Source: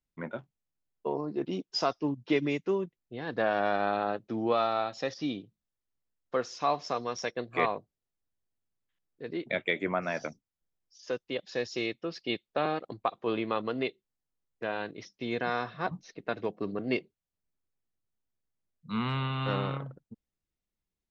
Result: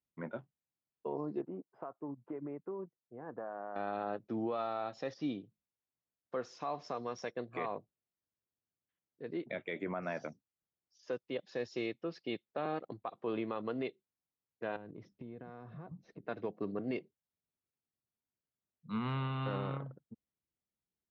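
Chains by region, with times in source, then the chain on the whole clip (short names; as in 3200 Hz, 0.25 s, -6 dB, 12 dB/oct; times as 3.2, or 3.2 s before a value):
1.41–3.76 LPF 1300 Hz 24 dB/oct + low shelf 450 Hz -9 dB + compressor 10:1, threshold -33 dBFS
14.76–16.26 tilt -4 dB/oct + compressor 8:1, threshold -40 dBFS
whole clip: HPF 84 Hz; high shelf 2500 Hz -10.5 dB; limiter -23.5 dBFS; gain -3.5 dB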